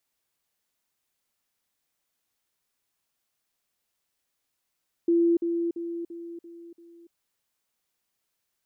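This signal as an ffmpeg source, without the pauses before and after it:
-f lavfi -i "aevalsrc='pow(10,(-18-6*floor(t/0.34))/20)*sin(2*PI*339*t)*clip(min(mod(t,0.34),0.29-mod(t,0.34))/0.005,0,1)':d=2.04:s=44100"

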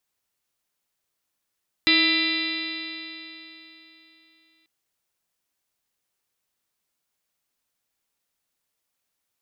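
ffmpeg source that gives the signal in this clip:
-f lavfi -i "aevalsrc='0.075*pow(10,-3*t/3.46)*sin(2*PI*320.37*t)+0.01*pow(10,-3*t/3.46)*sin(2*PI*642.94*t)+0.00944*pow(10,-3*t/3.46)*sin(2*PI*969.89*t)+0.0188*pow(10,-3*t/3.46)*sin(2*PI*1303.34*t)+0.00891*pow(10,-3*t/3.46)*sin(2*PI*1645.36*t)+0.0841*pow(10,-3*t/3.46)*sin(2*PI*1997.91*t)+0.0668*pow(10,-3*t/3.46)*sin(2*PI*2362.85*t)+0.0596*pow(10,-3*t/3.46)*sin(2*PI*2741.95*t)+0.0282*pow(10,-3*t/3.46)*sin(2*PI*3136.82*t)+0.0562*pow(10,-3*t/3.46)*sin(2*PI*3548.97*t)+0.112*pow(10,-3*t/3.46)*sin(2*PI*3979.78*t)+0.0119*pow(10,-3*t/3.46)*sin(2*PI*4430.5*t)+0.0299*pow(10,-3*t/3.46)*sin(2*PI*4902.27*t)':d=2.79:s=44100"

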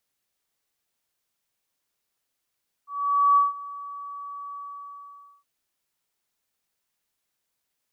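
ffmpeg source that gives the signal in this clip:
-f lavfi -i "aevalsrc='0.2*sin(2*PI*1140*t)':d=2.566:s=44100,afade=t=in:d=0.494,afade=t=out:st=0.494:d=0.163:silence=0.1,afade=t=out:st=1.68:d=0.886"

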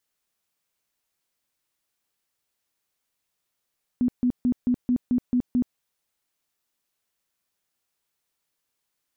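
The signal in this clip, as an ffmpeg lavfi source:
-f lavfi -i "aevalsrc='0.126*sin(2*PI*247*mod(t,0.22))*lt(mod(t,0.22),18/247)':d=1.76:s=44100"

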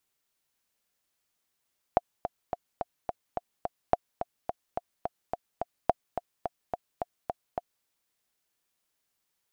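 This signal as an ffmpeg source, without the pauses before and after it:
-f lavfi -i "aevalsrc='pow(10,(-7.5-9.5*gte(mod(t,7*60/214),60/214))/20)*sin(2*PI*706*mod(t,60/214))*exp(-6.91*mod(t,60/214)/0.03)':d=5.88:s=44100"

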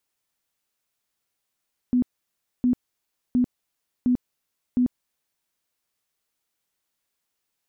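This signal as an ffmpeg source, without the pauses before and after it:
-f lavfi -i "aevalsrc='0.15*sin(2*PI*248*mod(t,0.71))*lt(mod(t,0.71),23/248)':d=3.55:s=44100"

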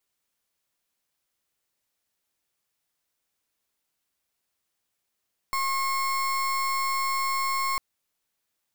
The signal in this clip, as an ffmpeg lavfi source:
-f lavfi -i "aevalsrc='0.0473*(2*lt(mod(1080*t,1),0.34)-1)':d=2.25:s=44100"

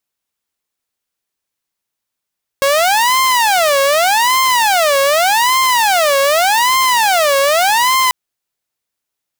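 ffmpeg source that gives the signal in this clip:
-f lavfi -i "aevalsrc='0.422*(2*mod((799.5*t-250.5/(2*PI*0.84)*sin(2*PI*0.84*t)),1)-1)':d=5.49:s=44100"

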